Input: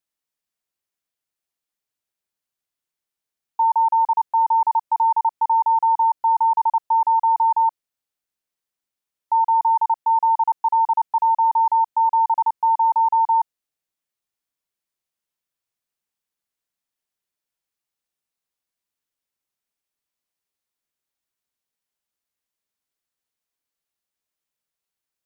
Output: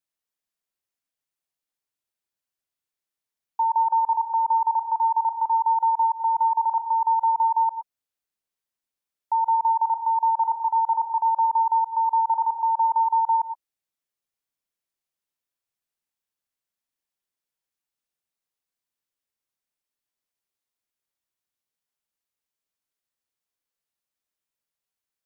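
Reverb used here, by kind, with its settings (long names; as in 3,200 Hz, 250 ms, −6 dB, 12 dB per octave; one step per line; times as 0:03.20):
reverb whose tail is shaped and stops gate 140 ms rising, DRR 8.5 dB
level −3.5 dB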